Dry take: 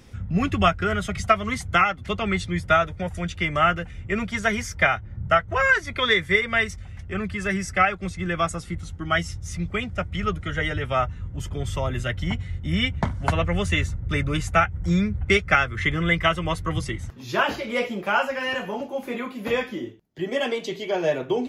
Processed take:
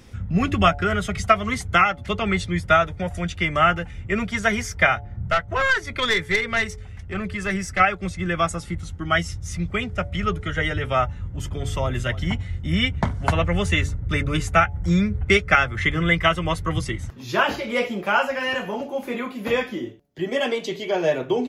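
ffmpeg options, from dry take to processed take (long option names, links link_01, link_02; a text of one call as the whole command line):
ffmpeg -i in.wav -filter_complex "[0:a]asettb=1/sr,asplit=3[link_01][link_02][link_03];[link_01]atrim=end=5.294[link_04];[link_02]atrim=start=5.29:end=7.8,asetpts=PTS-STARTPTS,afade=type=in:duration=0.004:curve=qsin,afade=type=out:start_time=2.506:duration=0.004:curve=qsin,aeval=exprs='(tanh(5.62*val(0)+0.4)-tanh(0.4))/5.62':channel_layout=same[link_05];[link_03]atrim=start=7.796[link_06];[link_04][link_05]acrossfade=duration=0.004:curve1=hsin:curve2=qsin[link_07];[link_07][link_06]acrossfade=duration=0.004:curve1=qsin:curve2=hsin,asplit=2[link_08][link_09];[link_09]afade=type=in:start_time=11.48:duration=0.01,afade=type=out:start_time=12.04:duration=0.01,aecho=0:1:290|580:0.149624|0.0149624[link_10];[link_08][link_10]amix=inputs=2:normalize=0,bandreject=frequency=142.7:width_type=h:width=4,bandreject=frequency=285.4:width_type=h:width=4,bandreject=frequency=428.1:width_type=h:width=4,bandreject=frequency=570.8:width_type=h:width=4,bandreject=frequency=713.5:width_type=h:width=4,bandreject=frequency=856.2:width_type=h:width=4,volume=2dB" out.wav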